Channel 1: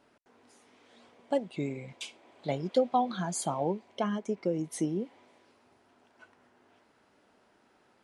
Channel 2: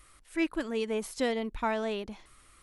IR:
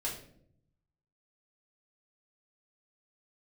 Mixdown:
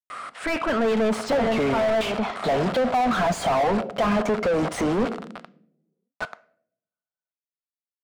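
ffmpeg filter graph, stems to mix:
-filter_complex "[0:a]dynaudnorm=f=200:g=3:m=10dB,acrusher=bits=6:mix=0:aa=0.000001,acompressor=threshold=-19dB:ratio=6,volume=-8dB,asplit=3[a][b][c];[b]volume=-20dB[d];[1:a]adelay=100,volume=-3.5dB,asplit=2[e][f];[f]volume=-18.5dB[g];[c]apad=whole_len=120194[h];[e][h]sidechaincompress=threshold=-46dB:ratio=8:attack=16:release=129[i];[2:a]atrim=start_sample=2205[j];[d][g]amix=inputs=2:normalize=0[k];[k][j]afir=irnorm=-1:irlink=0[l];[a][i][l]amix=inputs=3:normalize=0,highpass=160,equalizer=f=220:t=q:w=4:g=5,equalizer=f=320:t=q:w=4:g=-6,equalizer=f=700:t=q:w=4:g=7,equalizer=f=1.3k:t=q:w=4:g=7,equalizer=f=6.2k:t=q:w=4:g=-4,lowpass=f=8.9k:w=0.5412,lowpass=f=8.9k:w=1.3066,asplit=2[m][n];[n]highpass=f=720:p=1,volume=39dB,asoftclip=type=tanh:threshold=-12.5dB[o];[m][o]amix=inputs=2:normalize=0,lowpass=f=1k:p=1,volume=-6dB,equalizer=f=360:w=5.8:g=-5"

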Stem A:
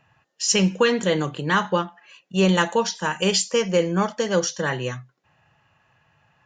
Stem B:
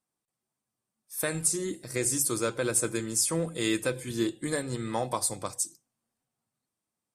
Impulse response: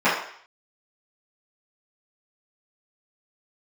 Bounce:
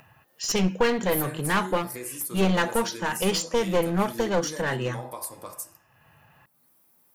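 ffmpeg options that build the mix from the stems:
-filter_complex "[0:a]highshelf=f=4.4k:g=-8,volume=-0.5dB[a];[1:a]acompressor=threshold=-41dB:ratio=3,aexciter=amount=7.1:drive=6.1:freq=11k,volume=0dB,asplit=2[b][c];[c]volume=-20.5dB[d];[2:a]atrim=start_sample=2205[e];[d][e]afir=irnorm=-1:irlink=0[f];[a][b][f]amix=inputs=3:normalize=0,acompressor=mode=upward:threshold=-49dB:ratio=2.5,aeval=exprs='clip(val(0),-1,0.0562)':c=same"

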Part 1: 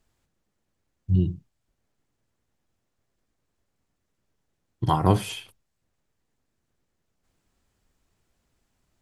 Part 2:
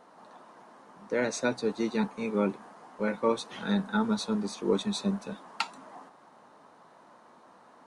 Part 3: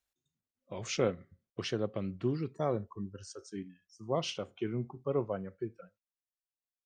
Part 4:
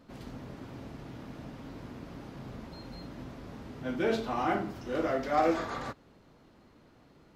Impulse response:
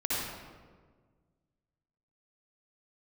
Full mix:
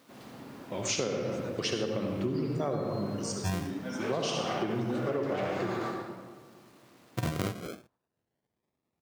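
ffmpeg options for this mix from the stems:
-filter_complex "[0:a]acrusher=samples=40:mix=1:aa=0.000001:lfo=1:lforange=24:lforate=0.26,adelay=2350,volume=-2.5dB[a];[1:a]volume=-19.5dB,asplit=2[b][c];[c]volume=-9dB[d];[2:a]highshelf=f=5.4k:g=11,volume=1dB,asplit=2[e][f];[f]volume=-4.5dB[g];[3:a]aeval=exprs='0.178*sin(PI/2*2.82*val(0)/0.178)':c=same,acrusher=bits=7:mix=0:aa=0.000001,lowshelf=f=220:g=-9,volume=-18dB,asplit=2[h][i];[i]volume=-4dB[j];[4:a]atrim=start_sample=2205[k];[g][j]amix=inputs=2:normalize=0[l];[l][k]afir=irnorm=-1:irlink=0[m];[d]aecho=0:1:106|212|318|424|530|636|742:1|0.48|0.23|0.111|0.0531|0.0255|0.0122[n];[a][b][e][h][m][n]amix=inputs=6:normalize=0,highpass=110,acompressor=threshold=-27dB:ratio=10"

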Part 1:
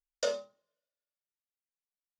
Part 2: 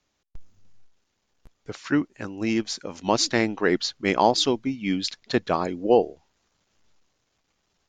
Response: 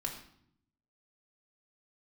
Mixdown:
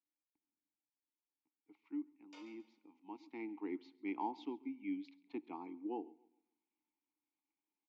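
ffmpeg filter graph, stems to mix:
-filter_complex "[0:a]highpass=950,dynaudnorm=f=110:g=9:m=9dB,alimiter=level_in=2dB:limit=-24dB:level=0:latency=1:release=39,volume=-2dB,adelay=2100,volume=2dB,asplit=2[a][b];[b]volume=-10.5dB[c];[1:a]acrossover=split=160 4300:gain=0.178 1 0.224[d][e][f];[d][e][f]amix=inputs=3:normalize=0,volume=-10dB,afade=t=in:st=3.22:d=0.3:silence=0.421697,asplit=3[g][h][i];[h]volume=-19dB[j];[i]volume=-23dB[k];[2:a]atrim=start_sample=2205[l];[j][l]afir=irnorm=-1:irlink=0[m];[c][k]amix=inputs=2:normalize=0,aecho=0:1:136|272|408|544|680:1|0.33|0.109|0.0359|0.0119[n];[a][g][m][n]amix=inputs=4:normalize=0,asplit=3[o][p][q];[o]bandpass=f=300:t=q:w=8,volume=0dB[r];[p]bandpass=f=870:t=q:w=8,volume=-6dB[s];[q]bandpass=f=2.24k:t=q:w=8,volume=-9dB[t];[r][s][t]amix=inputs=3:normalize=0,lowshelf=f=64:g=-9.5"

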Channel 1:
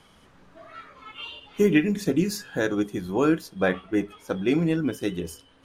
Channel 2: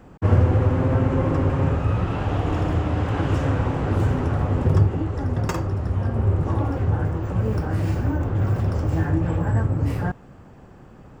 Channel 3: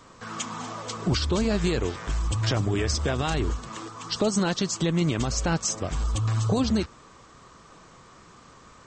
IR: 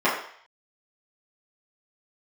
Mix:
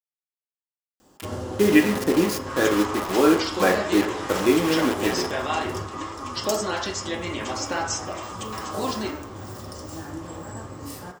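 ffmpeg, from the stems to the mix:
-filter_complex "[0:a]highpass=92,acrusher=bits=4:mix=0:aa=0.000001,volume=0dB,asplit=2[a][b];[b]volume=-18dB[c];[1:a]aexciter=amount=9:drive=4.6:freq=3.4k,adelay=1000,volume=-12.5dB,asplit=2[d][e];[e]volume=-19dB[f];[2:a]highpass=f=840:p=1,adelay=2250,volume=-4dB,asplit=2[g][h];[h]volume=-10dB[i];[3:a]atrim=start_sample=2205[j];[c][f][i]amix=inputs=3:normalize=0[k];[k][j]afir=irnorm=-1:irlink=0[l];[a][d][g][l]amix=inputs=4:normalize=0,lowshelf=f=140:g=-8.5"

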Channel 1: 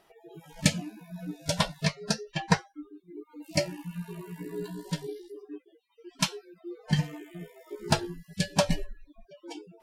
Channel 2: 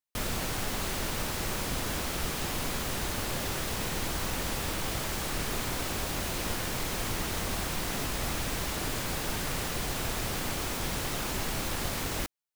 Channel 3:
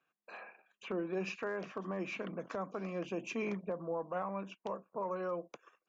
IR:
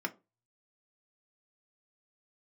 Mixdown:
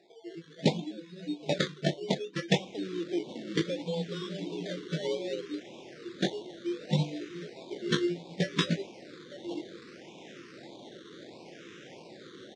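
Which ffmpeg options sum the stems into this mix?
-filter_complex "[0:a]flanger=delay=17.5:depth=3.7:speed=0.24,volume=2dB[a];[1:a]adelay=2350,volume=-15.5dB[b];[2:a]asplit=2[c][d];[d]adelay=2.1,afreqshift=-0.75[e];[c][e]amix=inputs=2:normalize=1,afade=t=in:st=2.32:d=0.61:silence=0.237137[f];[a][b][f]amix=inputs=3:normalize=0,acrusher=samples=14:mix=1:aa=0.000001:lfo=1:lforange=8.4:lforate=0.66,highpass=f=150:w=0.5412,highpass=f=150:w=1.3066,equalizer=f=350:t=q:w=4:g=9,equalizer=f=530:t=q:w=4:g=4,equalizer=f=1.1k:t=q:w=4:g=-6,equalizer=f=3.6k:t=q:w=4:g=8,lowpass=f=6.4k:w=0.5412,lowpass=f=6.4k:w=1.3066,afftfilt=real='re*(1-between(b*sr/1024,700*pow(1600/700,0.5+0.5*sin(2*PI*1.6*pts/sr))/1.41,700*pow(1600/700,0.5+0.5*sin(2*PI*1.6*pts/sr))*1.41))':imag='im*(1-between(b*sr/1024,700*pow(1600/700,0.5+0.5*sin(2*PI*1.6*pts/sr))/1.41,700*pow(1600/700,0.5+0.5*sin(2*PI*1.6*pts/sr))*1.41))':win_size=1024:overlap=0.75"

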